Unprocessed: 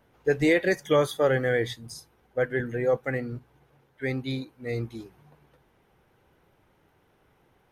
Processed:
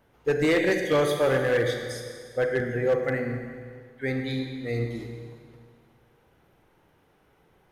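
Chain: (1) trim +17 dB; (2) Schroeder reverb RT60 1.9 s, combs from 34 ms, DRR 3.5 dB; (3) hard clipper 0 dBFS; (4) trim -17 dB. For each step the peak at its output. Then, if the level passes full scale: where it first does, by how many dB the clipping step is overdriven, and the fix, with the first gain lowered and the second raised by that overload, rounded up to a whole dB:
+5.5 dBFS, +8.5 dBFS, 0.0 dBFS, -17.0 dBFS; step 1, 8.5 dB; step 1 +8 dB, step 4 -8 dB

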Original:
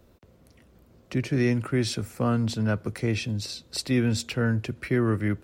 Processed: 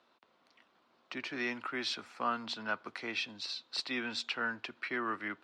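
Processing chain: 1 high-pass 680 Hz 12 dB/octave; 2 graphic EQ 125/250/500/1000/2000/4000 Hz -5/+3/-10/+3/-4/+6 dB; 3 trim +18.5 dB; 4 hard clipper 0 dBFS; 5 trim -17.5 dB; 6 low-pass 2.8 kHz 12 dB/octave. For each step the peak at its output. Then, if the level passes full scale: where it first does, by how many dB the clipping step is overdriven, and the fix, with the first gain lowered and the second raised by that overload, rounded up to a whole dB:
-16.0 dBFS, -11.5 dBFS, +7.0 dBFS, 0.0 dBFS, -17.5 dBFS, -20.0 dBFS; step 3, 7.0 dB; step 3 +11.5 dB, step 5 -10.5 dB

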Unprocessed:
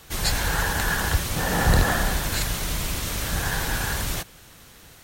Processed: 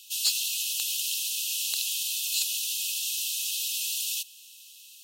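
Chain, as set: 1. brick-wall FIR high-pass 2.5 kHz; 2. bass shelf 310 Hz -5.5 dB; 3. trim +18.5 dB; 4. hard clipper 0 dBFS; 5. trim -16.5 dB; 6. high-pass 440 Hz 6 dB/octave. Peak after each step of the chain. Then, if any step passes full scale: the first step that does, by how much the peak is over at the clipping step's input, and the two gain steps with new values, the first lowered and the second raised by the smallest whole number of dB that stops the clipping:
-10.5 dBFS, -10.5 dBFS, +8.0 dBFS, 0.0 dBFS, -16.5 dBFS, -15.5 dBFS; step 3, 8.0 dB; step 3 +10.5 dB, step 5 -8.5 dB

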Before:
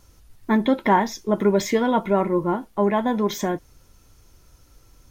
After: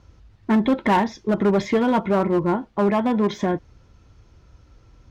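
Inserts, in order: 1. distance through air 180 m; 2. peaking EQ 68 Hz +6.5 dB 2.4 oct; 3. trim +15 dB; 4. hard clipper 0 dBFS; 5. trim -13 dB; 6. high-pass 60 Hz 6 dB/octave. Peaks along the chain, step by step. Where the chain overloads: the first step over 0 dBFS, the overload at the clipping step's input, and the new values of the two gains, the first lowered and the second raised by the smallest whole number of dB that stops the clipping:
-6.5 dBFS, -5.5 dBFS, +9.5 dBFS, 0.0 dBFS, -13.0 dBFS, -10.5 dBFS; step 3, 9.5 dB; step 3 +5 dB, step 5 -3 dB

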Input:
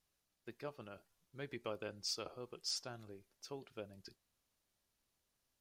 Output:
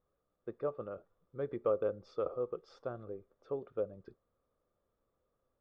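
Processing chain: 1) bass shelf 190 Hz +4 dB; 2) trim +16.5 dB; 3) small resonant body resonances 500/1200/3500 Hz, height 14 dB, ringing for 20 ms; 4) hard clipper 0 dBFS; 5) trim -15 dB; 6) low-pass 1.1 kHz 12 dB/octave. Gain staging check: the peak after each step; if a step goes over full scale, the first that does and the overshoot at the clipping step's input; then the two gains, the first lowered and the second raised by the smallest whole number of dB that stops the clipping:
-25.5 dBFS, -9.0 dBFS, -5.0 dBFS, -5.0 dBFS, -20.0 dBFS, -21.0 dBFS; nothing clips

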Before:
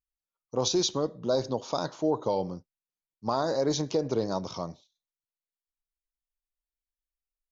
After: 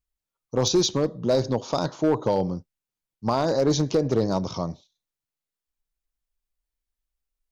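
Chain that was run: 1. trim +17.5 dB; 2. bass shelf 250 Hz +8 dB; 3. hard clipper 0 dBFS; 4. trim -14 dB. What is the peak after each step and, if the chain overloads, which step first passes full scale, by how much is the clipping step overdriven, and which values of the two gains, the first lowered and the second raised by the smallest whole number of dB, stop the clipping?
+3.0 dBFS, +4.5 dBFS, 0.0 dBFS, -14.0 dBFS; step 1, 4.5 dB; step 1 +12.5 dB, step 4 -9 dB

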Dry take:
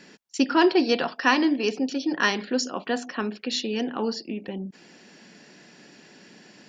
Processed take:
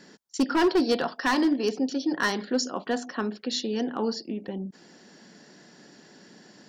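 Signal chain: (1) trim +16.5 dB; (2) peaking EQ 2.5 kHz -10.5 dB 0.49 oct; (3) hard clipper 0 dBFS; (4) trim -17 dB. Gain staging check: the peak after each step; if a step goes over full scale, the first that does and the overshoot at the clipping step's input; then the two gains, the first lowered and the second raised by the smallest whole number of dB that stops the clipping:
+11.0 dBFS, +8.5 dBFS, 0.0 dBFS, -17.0 dBFS; step 1, 8.5 dB; step 1 +7.5 dB, step 4 -8 dB

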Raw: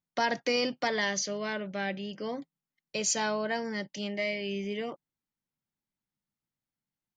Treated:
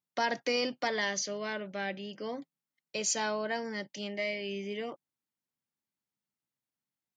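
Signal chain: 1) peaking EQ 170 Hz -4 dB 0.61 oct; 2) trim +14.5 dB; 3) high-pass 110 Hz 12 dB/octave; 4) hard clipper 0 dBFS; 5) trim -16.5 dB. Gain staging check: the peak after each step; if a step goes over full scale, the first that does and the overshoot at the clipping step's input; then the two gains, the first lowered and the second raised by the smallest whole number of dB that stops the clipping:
-16.0 dBFS, -1.5 dBFS, -2.0 dBFS, -2.0 dBFS, -18.5 dBFS; nothing clips

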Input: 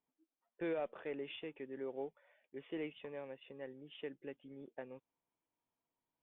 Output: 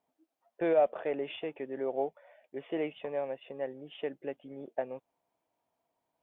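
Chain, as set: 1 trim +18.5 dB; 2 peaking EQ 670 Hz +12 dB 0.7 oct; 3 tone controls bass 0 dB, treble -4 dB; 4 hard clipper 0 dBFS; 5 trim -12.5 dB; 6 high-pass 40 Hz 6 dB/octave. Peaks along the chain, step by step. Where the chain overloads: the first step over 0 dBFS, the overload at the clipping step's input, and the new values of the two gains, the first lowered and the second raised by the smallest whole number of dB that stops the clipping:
-11.0 dBFS, -3.0 dBFS, -3.0 dBFS, -3.0 dBFS, -15.5 dBFS, -15.5 dBFS; nothing clips

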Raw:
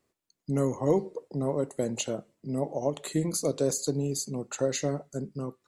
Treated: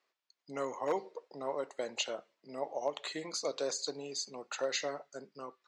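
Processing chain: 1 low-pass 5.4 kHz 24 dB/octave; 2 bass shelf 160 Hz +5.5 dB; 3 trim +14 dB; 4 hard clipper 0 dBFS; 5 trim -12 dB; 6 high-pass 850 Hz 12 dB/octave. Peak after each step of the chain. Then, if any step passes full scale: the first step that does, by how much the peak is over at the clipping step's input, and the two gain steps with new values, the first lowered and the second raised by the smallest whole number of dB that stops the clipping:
-11.5 dBFS, -11.0 dBFS, +3.0 dBFS, 0.0 dBFS, -12.0 dBFS, -21.0 dBFS; step 3, 3.0 dB; step 3 +11 dB, step 5 -9 dB

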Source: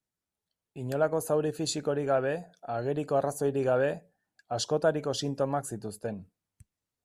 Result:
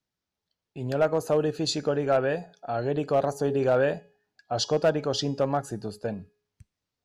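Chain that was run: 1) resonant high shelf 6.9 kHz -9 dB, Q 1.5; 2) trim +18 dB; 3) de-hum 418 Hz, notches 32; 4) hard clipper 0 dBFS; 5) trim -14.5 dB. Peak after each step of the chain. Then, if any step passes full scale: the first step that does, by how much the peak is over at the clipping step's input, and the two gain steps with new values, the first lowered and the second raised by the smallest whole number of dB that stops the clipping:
-13.0 dBFS, +5.0 dBFS, +5.0 dBFS, 0.0 dBFS, -14.5 dBFS; step 2, 5.0 dB; step 2 +13 dB, step 5 -9.5 dB

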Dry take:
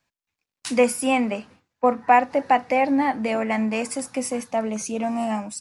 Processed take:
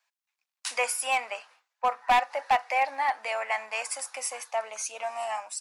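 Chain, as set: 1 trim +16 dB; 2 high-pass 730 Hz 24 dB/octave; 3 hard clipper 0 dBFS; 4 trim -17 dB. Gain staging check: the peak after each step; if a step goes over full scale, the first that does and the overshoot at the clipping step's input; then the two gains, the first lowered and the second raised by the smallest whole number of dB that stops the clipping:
+11.0 dBFS, +10.0 dBFS, 0.0 dBFS, -17.0 dBFS; step 1, 10.0 dB; step 1 +6 dB, step 4 -7 dB

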